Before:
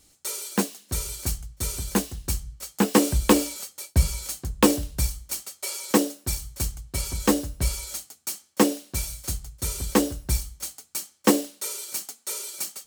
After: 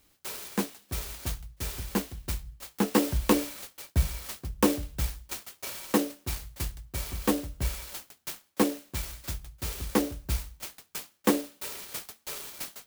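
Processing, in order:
converter with an unsteady clock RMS 0.047 ms
level −5 dB

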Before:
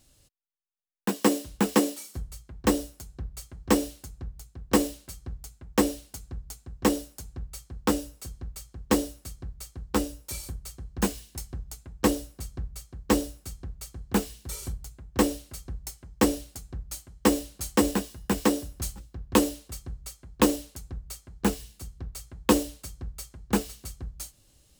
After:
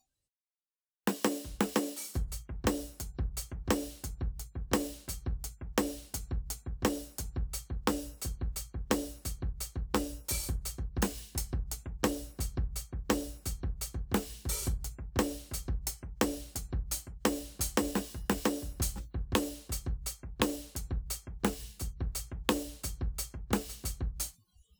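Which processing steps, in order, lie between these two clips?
noise reduction from a noise print of the clip's start 28 dB
downward compressor 6 to 1, threshold −30 dBFS, peak gain reduction 14.5 dB
level +3 dB

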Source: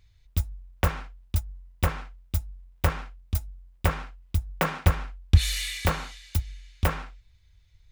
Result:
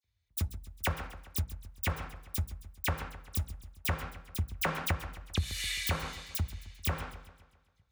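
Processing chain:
noise gate −52 dBFS, range −15 dB
mains-hum notches 60/120/180/240/300/360/420/480/540 Hz
all-pass dispersion lows, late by 44 ms, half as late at 3,000 Hz
downward compressor 12 to 1, threshold −27 dBFS, peak gain reduction 16.5 dB
high-pass filter 55 Hz 24 dB per octave
feedback echo with a swinging delay time 132 ms, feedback 52%, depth 67 cents, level −14 dB

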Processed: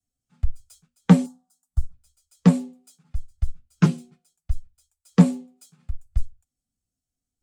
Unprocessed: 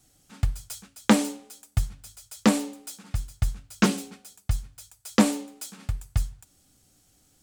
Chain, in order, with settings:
frequency shifter −35 Hz
0:01.26–0:01.94: phaser with its sweep stopped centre 1,000 Hz, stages 4
every bin expanded away from the loudest bin 1.5 to 1
level +4 dB

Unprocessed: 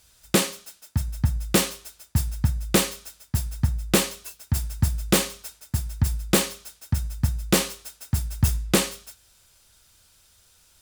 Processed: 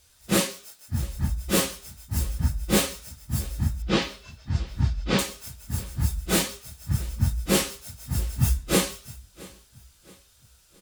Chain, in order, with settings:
random phases in long frames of 100 ms
0:03.82–0:05.19: low-pass filter 5,000 Hz 24 dB per octave
on a send: repeating echo 671 ms, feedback 41%, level −22 dB
on the sum: level −1.5 dB

